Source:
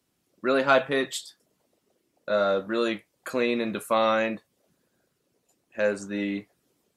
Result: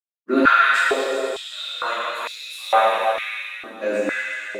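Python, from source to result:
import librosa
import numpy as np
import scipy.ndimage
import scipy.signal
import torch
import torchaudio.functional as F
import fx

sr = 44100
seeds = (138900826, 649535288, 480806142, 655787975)

y = np.sign(x) * np.maximum(np.abs(x) - 10.0 ** (-49.5 / 20.0), 0.0)
y = fx.stretch_vocoder_free(y, sr, factor=0.66)
y = fx.echo_stepped(y, sr, ms=122, hz=2600.0, octaves=0.7, feedback_pct=70, wet_db=-3.0)
y = fx.rev_plate(y, sr, seeds[0], rt60_s=3.1, hf_ratio=0.95, predelay_ms=0, drr_db=-9.0)
y = fx.filter_held_highpass(y, sr, hz=2.2, low_hz=300.0, high_hz=4900.0)
y = y * 10.0 ** (-1.0 / 20.0)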